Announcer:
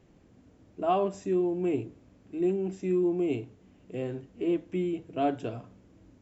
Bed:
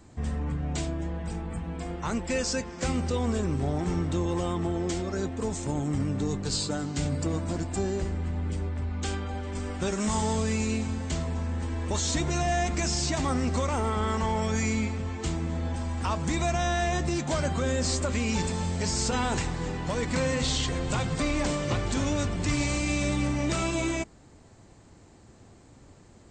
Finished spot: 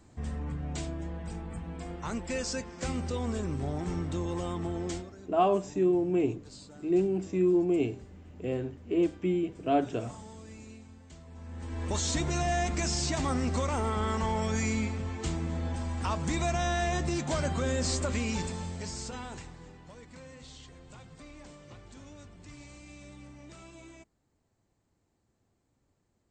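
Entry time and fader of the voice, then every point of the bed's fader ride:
4.50 s, +1.5 dB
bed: 4.95 s -5 dB
5.16 s -20.5 dB
11.22 s -20.5 dB
11.84 s -2.5 dB
18.14 s -2.5 dB
20.09 s -22 dB

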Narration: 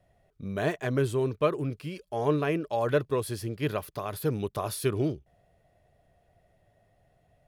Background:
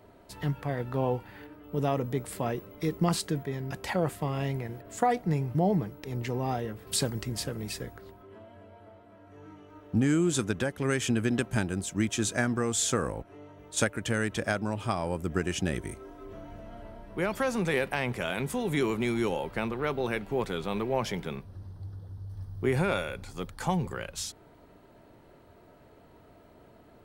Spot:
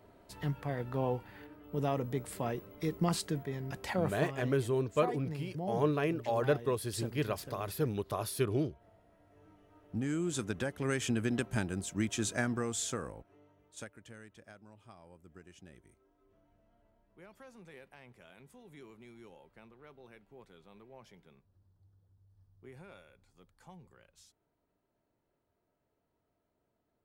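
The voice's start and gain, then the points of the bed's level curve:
3.55 s, -4.0 dB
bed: 4.07 s -4.5 dB
4.42 s -13 dB
9.61 s -13 dB
10.73 s -5 dB
12.53 s -5 dB
14.37 s -25.5 dB

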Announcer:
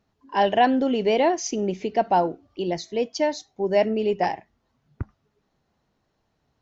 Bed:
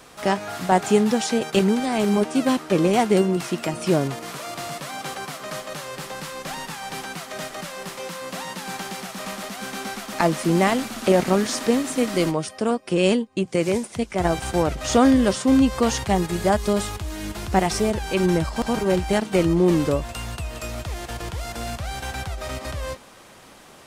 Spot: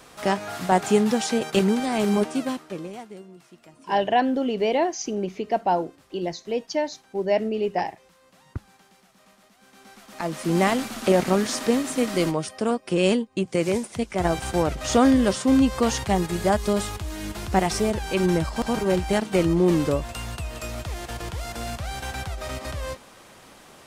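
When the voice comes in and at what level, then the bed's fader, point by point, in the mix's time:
3.55 s, -2.0 dB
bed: 2.24 s -1.5 dB
3.19 s -24.5 dB
9.58 s -24.5 dB
10.59 s -1.5 dB

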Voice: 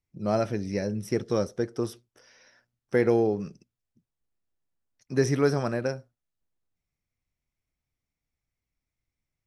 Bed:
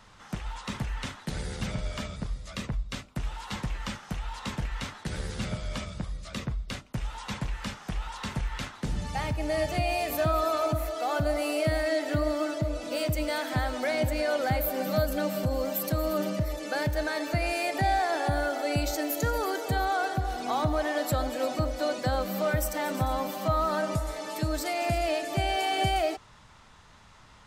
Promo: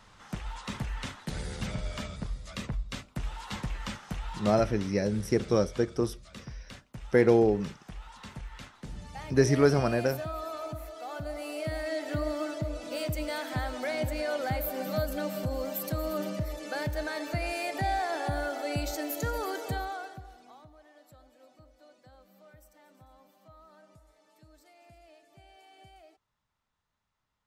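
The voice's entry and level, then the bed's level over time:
4.20 s, +1.0 dB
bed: 4.39 s -2 dB
4.9 s -10.5 dB
11.18 s -10.5 dB
12.21 s -4 dB
19.69 s -4 dB
20.72 s -29 dB

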